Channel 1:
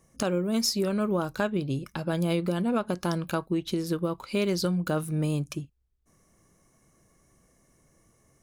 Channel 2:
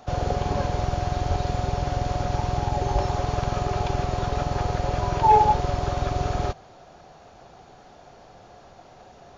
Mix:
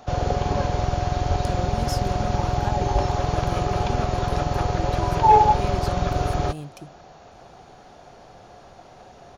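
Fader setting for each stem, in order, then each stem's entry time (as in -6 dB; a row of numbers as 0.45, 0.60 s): -7.5, +2.0 dB; 1.25, 0.00 s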